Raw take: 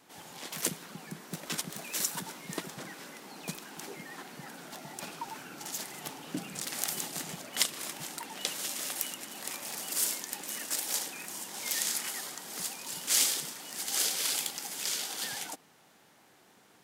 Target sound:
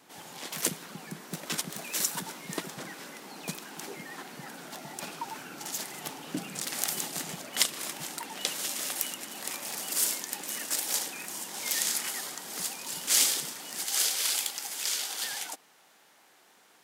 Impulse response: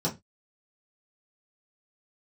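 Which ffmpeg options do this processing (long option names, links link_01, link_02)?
-af "asetnsamples=nb_out_samples=441:pad=0,asendcmd='13.84 highpass f 620',highpass=frequency=94:poles=1,volume=2.5dB"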